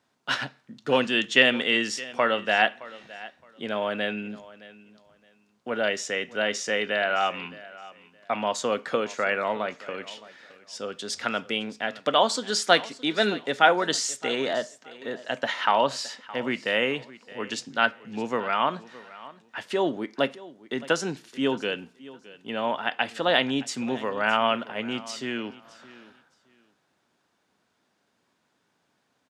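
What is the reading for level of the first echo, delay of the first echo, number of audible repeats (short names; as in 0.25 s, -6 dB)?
-19.0 dB, 0.617 s, 2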